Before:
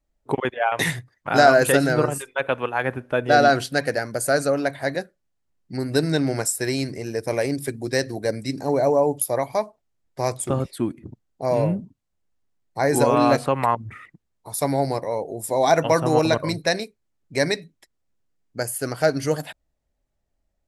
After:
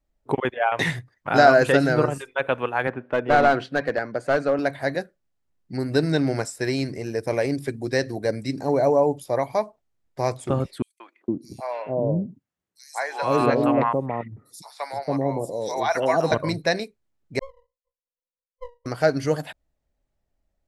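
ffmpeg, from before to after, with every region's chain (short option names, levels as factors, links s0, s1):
-filter_complex "[0:a]asettb=1/sr,asplit=3[s0][s1][s2];[s0]atrim=end=2.874[s3];[s1]atrim=start=2.87:end=4.59,asetpts=PTS-STARTPTS,afade=t=in:d=0.004:c=qsin,afade=t=out:st=1.716:d=0.004:c=qsin,highpass=160,lowpass=2900,aeval=exprs='clip(val(0),-1,0.141)':c=same[s4];[s2]atrim=start=4.586[s5];[s3][s4]acrossfade=d=0.004:c1=hsin:c2=qsin[s6];[s6][s5]acrossfade=d=0.004:c1=qsin:c2=hsin,asettb=1/sr,asplit=3[s7][s8][s9];[s7]atrim=end=10.824[s10];[s8]atrim=start=10.82:end=16.32,asetpts=PTS-STARTPTS,afade=t=in:d=0.004:c=qsin,afade=t=out:st=5.496:d=0.004:c=qsin,highpass=120,acrossover=split=710|4400[s11][s12][s13];[s12]adelay=180[s14];[s11]adelay=460[s15];[s15][s14][s13]amix=inputs=3:normalize=0,atrim=end_sample=242550[s16];[s9]atrim=start=16.316[s17];[s10][s16]acrossfade=d=0.004:c1=hsin:c2=qsin[s18];[s18][s17]acrossfade=d=0.004:c1=qsin:c2=hsin,asettb=1/sr,asplit=3[s19][s20][s21];[s19]atrim=end=17.394[s22];[s20]atrim=start=17.39:end=18.86,asetpts=PTS-STARTPTS,afade=t=in:d=0.004:c=qsin,afade=t=out:st=1.466:d=0.004:c=qsin,asuperpass=centerf=510:order=20:qfactor=7.7,aeval=exprs='max(val(0),0)':c=same[s23];[s21]atrim=start=18.856[s24];[s22][s23]acrossfade=d=0.004:c1=hsin:c2=qsin[s25];[s25][s24]acrossfade=d=0.004:c1=qsin:c2=hsin,acrossover=split=6700[s26][s27];[s27]acompressor=threshold=0.00631:ratio=4:attack=1:release=60[s28];[s26][s28]amix=inputs=2:normalize=0,highshelf=f=5300:g=-5.5"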